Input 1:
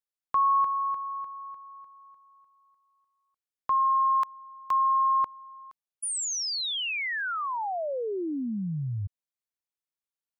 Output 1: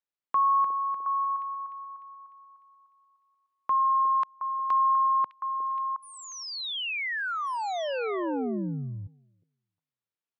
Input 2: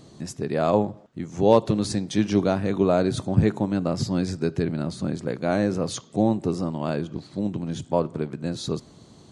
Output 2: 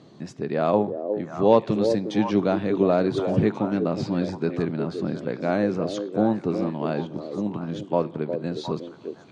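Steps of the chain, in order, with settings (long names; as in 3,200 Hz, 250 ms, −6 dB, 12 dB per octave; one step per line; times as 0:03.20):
band-pass filter 140–3,700 Hz
echo through a band-pass that steps 359 ms, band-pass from 410 Hz, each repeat 1.4 octaves, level −3.5 dB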